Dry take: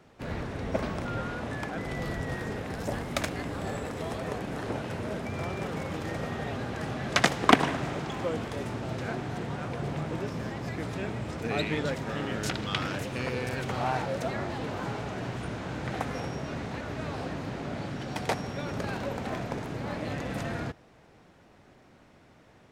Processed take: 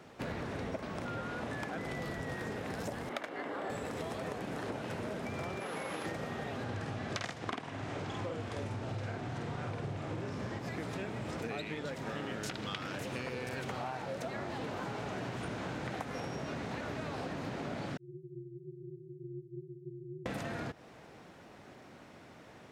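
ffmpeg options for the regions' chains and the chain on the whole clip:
-filter_complex "[0:a]asettb=1/sr,asplit=3[a][b][c];[a]atrim=end=3.094[d];[b]atrim=start=3.09:end=3.7,asetpts=PTS-STARTPTS,afade=t=in:d=0.004:c=qsin,afade=t=out:st=0.606:d=0.004:c=qsin,acrossover=split=270 3100:gain=0.0794 1 0.178[e][f][g];[e][f][g]amix=inputs=3:normalize=0,bandreject=f=2.5k:w=13[h];[c]atrim=start=3.696[i];[d][h]acrossfade=d=0.004:c1=hsin:c2=qsin[j];[j][i]acrossfade=d=0.004:c1=qsin:c2=hsin,asettb=1/sr,asplit=3[k][l][m];[k]atrim=end=5.604[n];[l]atrim=start=5.6:end=6.06,asetpts=PTS-STARTPTS,afade=t=in:d=0.004:c=qsin,afade=t=out:st=0.456:d=0.004:c=qsin,highpass=f=480:p=1,acrossover=split=5200[o][p];[p]acompressor=threshold=-59dB:ratio=4:attack=1:release=60[q];[o][q]amix=inputs=2:normalize=0,aeval=exprs='val(0)+0.00178*sin(2*PI*11000*n/s)':c=same[r];[m]atrim=start=6.056[s];[n][r]acrossfade=d=0.004:c1=hsin:c2=qsin[t];[t][s]acrossfade=d=0.004:c1=qsin:c2=hsin,asettb=1/sr,asplit=3[u][v][w];[u]atrim=end=6.644[x];[v]atrim=start=6.64:end=10.59,asetpts=PTS-STARTPTS,afade=t=in:d=0.004:c=qsin,afade=t=out:st=3.946:d=0.004:c=qsin,lowpass=9.4k,equalizer=f=100:w=4.8:g=14.5,asplit=2[y][z];[z]adelay=49,volume=-2dB[aa];[y][aa]amix=inputs=2:normalize=0,atrim=end_sample=174195[ab];[w]atrim=start=10.586[ac];[x][ab]acrossfade=d=0.004:c1=hsin:c2=qsin[ad];[ad][ac]acrossfade=d=0.004:c1=qsin:c2=hsin,asettb=1/sr,asplit=3[ae][af][ag];[ae]atrim=end=17.974[ah];[af]atrim=start=17.97:end=20.26,asetpts=PTS-STARTPTS,afade=t=in:d=0.004:c=qsin,afade=t=out:st=2.286:d=0.004:c=qsin,asuperpass=centerf=250:order=12:qfactor=7.8,aeval=exprs='val(0)*sin(2*PI*110*n/s)':c=same[ai];[ag]atrim=start=20.256[aj];[ah][ai]acrossfade=d=0.004:c1=hsin:c2=qsin[ak];[ak][aj]acrossfade=d=0.004:c1=qsin:c2=hsin,highpass=f=130:p=1,acompressor=threshold=-39dB:ratio=20,volume=4dB"

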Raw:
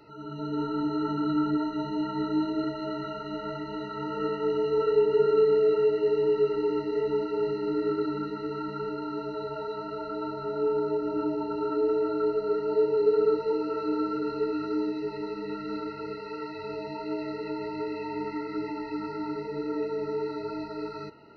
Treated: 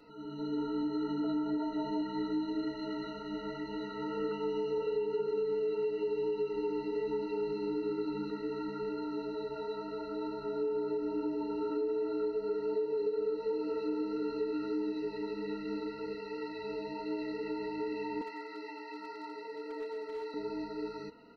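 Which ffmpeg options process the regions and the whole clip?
-filter_complex "[0:a]asettb=1/sr,asplit=3[a][b][c];[a]atrim=end=1.244[d];[b]atrim=start=1.24:end=2.02,asetpts=PTS-STARTPTS,afade=t=in:d=0.004:c=qsin,afade=t=out:st=0.776:d=0.004:c=qsin,equalizer=f=680:w=2.4:g=12.5,bandreject=f=1.8k:w=20[e];[c]atrim=start=2.016[f];[d][e]acrossfade=d=0.004:c1=hsin:c2=qsin[g];[g][f]acrossfade=d=0.004:c1=qsin:c2=hsin,asettb=1/sr,asplit=3[h][i][j];[h]atrim=end=4.314[k];[i]atrim=start=4.31:end=8.3,asetpts=PTS-STARTPTS,afade=t=in:d=0.004:c=qsin,afade=t=out:st=3.986:d=0.004:c=qsin,asuperstop=centerf=1700:order=12:qfactor=3.7,aecho=1:1:5.5:0.42,atrim=end_sample=175959[l];[j]atrim=start=8.296[m];[k][l]acrossfade=d=0.004:c1=hsin:c2=qsin[n];[n][m]acrossfade=d=0.004:c1=qsin:c2=hsin,asettb=1/sr,asplit=3[o][p][q];[o]atrim=end=18.214[r];[p]atrim=start=18.21:end=20.34,asetpts=PTS-STARTPTS,afade=t=in:d=0.004:c=qsin,afade=t=out:st=2.126:d=0.004:c=qsin,highpass=590,asoftclip=type=hard:threshold=-31dB[s];[q]atrim=start=20.336[t];[r][s]acrossfade=d=0.004:c1=hsin:c2=qsin[u];[u][t]acrossfade=d=0.004:c1=qsin:c2=hsin,aecho=1:1:4.1:0.79,acompressor=threshold=-25dB:ratio=6,volume=-5dB"

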